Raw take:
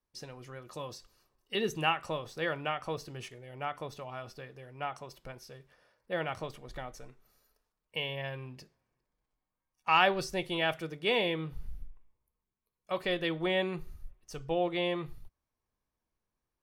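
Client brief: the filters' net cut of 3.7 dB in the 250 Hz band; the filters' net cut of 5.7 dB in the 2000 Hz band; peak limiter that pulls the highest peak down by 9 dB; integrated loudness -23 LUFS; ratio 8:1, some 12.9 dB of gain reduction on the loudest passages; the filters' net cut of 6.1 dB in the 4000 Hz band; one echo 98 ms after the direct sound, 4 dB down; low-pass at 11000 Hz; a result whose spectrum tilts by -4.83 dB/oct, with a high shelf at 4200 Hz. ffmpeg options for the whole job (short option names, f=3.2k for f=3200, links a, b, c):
-af "lowpass=11k,equalizer=f=250:t=o:g=-6.5,equalizer=f=2k:t=o:g=-6,equalizer=f=4k:t=o:g=-7.5,highshelf=f=4.2k:g=3.5,acompressor=threshold=-35dB:ratio=8,alimiter=level_in=7.5dB:limit=-24dB:level=0:latency=1,volume=-7.5dB,aecho=1:1:98:0.631,volume=20dB"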